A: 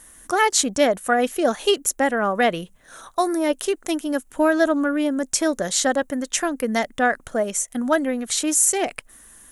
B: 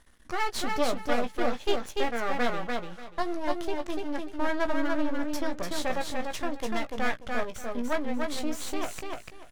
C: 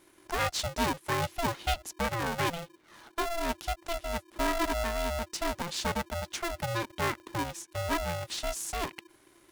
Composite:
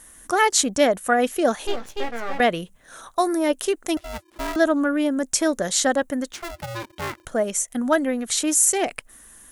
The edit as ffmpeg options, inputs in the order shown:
-filter_complex "[2:a]asplit=2[s0][s1];[0:a]asplit=4[s2][s3][s4][s5];[s2]atrim=end=1.672[s6];[1:a]atrim=start=1.668:end=2.402[s7];[s3]atrim=start=2.398:end=3.972[s8];[s0]atrim=start=3.968:end=4.562[s9];[s4]atrim=start=4.558:end=6.332[s10];[s1]atrim=start=6.328:end=7.252[s11];[s5]atrim=start=7.248[s12];[s6][s7]acrossfade=d=0.004:c1=hsin:c2=hsin[s13];[s13][s8]acrossfade=d=0.004:c1=hsin:c2=hsin[s14];[s14][s9]acrossfade=d=0.004:c1=hsin:c2=hsin[s15];[s15][s10]acrossfade=d=0.004:c1=hsin:c2=hsin[s16];[s16][s11]acrossfade=d=0.004:c1=hsin:c2=hsin[s17];[s17][s12]acrossfade=d=0.004:c1=hsin:c2=hsin"

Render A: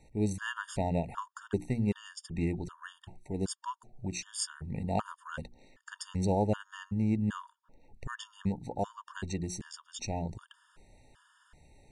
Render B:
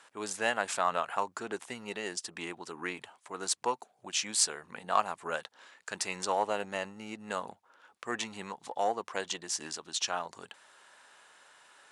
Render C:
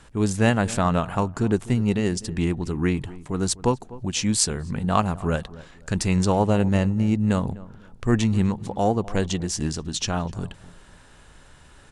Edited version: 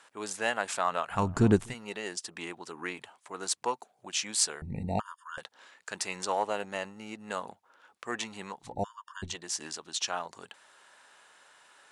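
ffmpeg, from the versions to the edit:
-filter_complex "[0:a]asplit=2[s0][s1];[1:a]asplit=4[s2][s3][s4][s5];[s2]atrim=end=1.33[s6];[2:a]atrim=start=1.09:end=1.75[s7];[s3]atrim=start=1.51:end=4.622[s8];[s0]atrim=start=4.618:end=5.382[s9];[s4]atrim=start=5.378:end=8.77[s10];[s1]atrim=start=8.61:end=9.37[s11];[s5]atrim=start=9.21[s12];[s6][s7]acrossfade=d=0.24:c1=tri:c2=tri[s13];[s13][s8]acrossfade=d=0.24:c1=tri:c2=tri[s14];[s14][s9]acrossfade=d=0.004:c1=hsin:c2=hsin[s15];[s15][s10]acrossfade=d=0.004:c1=hsin:c2=hsin[s16];[s16][s11]acrossfade=d=0.16:c1=tri:c2=tri[s17];[s17][s12]acrossfade=d=0.16:c1=tri:c2=tri"

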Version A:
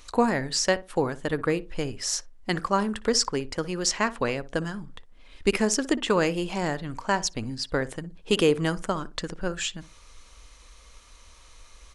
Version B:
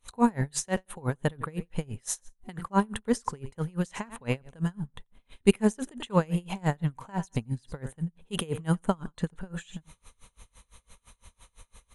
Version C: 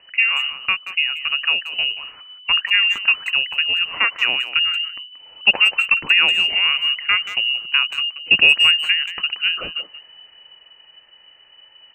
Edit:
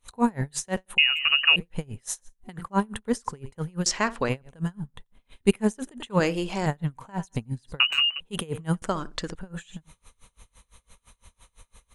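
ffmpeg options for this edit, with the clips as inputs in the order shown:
-filter_complex "[2:a]asplit=2[s0][s1];[0:a]asplit=3[s2][s3][s4];[1:a]asplit=6[s5][s6][s7][s8][s9][s10];[s5]atrim=end=0.982[s11];[s0]atrim=start=0.978:end=1.562[s12];[s6]atrim=start=1.558:end=3.862[s13];[s2]atrim=start=3.858:end=4.292[s14];[s7]atrim=start=4.288:end=6.202[s15];[s3]atrim=start=6.198:end=6.662[s16];[s8]atrim=start=6.658:end=7.802[s17];[s1]atrim=start=7.798:end=8.202[s18];[s9]atrim=start=8.198:end=8.822[s19];[s4]atrim=start=8.818:end=9.352[s20];[s10]atrim=start=9.348[s21];[s11][s12]acrossfade=d=0.004:c1=hsin:c2=hsin[s22];[s22][s13]acrossfade=d=0.004:c1=hsin:c2=hsin[s23];[s23][s14]acrossfade=d=0.004:c1=hsin:c2=hsin[s24];[s24][s15]acrossfade=d=0.004:c1=hsin:c2=hsin[s25];[s25][s16]acrossfade=d=0.004:c1=hsin:c2=hsin[s26];[s26][s17]acrossfade=d=0.004:c1=hsin:c2=hsin[s27];[s27][s18]acrossfade=d=0.004:c1=hsin:c2=hsin[s28];[s28][s19]acrossfade=d=0.004:c1=hsin:c2=hsin[s29];[s29][s20]acrossfade=d=0.004:c1=hsin:c2=hsin[s30];[s30][s21]acrossfade=d=0.004:c1=hsin:c2=hsin"

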